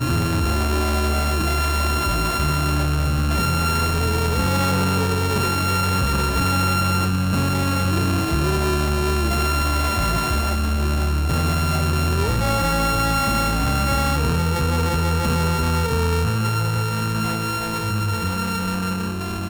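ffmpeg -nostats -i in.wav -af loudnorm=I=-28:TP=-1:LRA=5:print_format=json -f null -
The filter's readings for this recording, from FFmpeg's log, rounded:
"input_i" : "-20.9",
"input_tp" : "-9.9",
"input_lra" : "3.4",
"input_thresh" : "-30.9",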